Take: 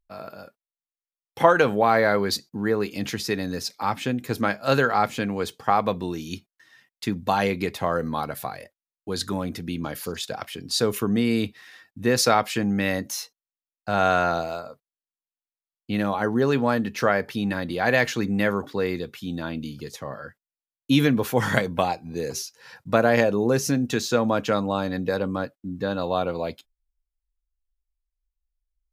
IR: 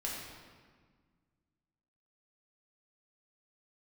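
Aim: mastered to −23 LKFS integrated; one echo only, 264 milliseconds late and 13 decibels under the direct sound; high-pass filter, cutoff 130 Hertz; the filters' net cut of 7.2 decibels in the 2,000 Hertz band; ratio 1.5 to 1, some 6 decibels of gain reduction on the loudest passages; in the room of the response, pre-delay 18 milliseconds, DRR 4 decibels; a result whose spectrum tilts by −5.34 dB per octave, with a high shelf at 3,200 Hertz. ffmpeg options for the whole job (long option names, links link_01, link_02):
-filter_complex "[0:a]highpass=130,equalizer=frequency=2000:width_type=o:gain=-7,highshelf=frequency=3200:gain=-9,acompressor=threshold=-28dB:ratio=1.5,aecho=1:1:264:0.224,asplit=2[link_01][link_02];[1:a]atrim=start_sample=2205,adelay=18[link_03];[link_02][link_03]afir=irnorm=-1:irlink=0,volume=-6.5dB[link_04];[link_01][link_04]amix=inputs=2:normalize=0,volume=4.5dB"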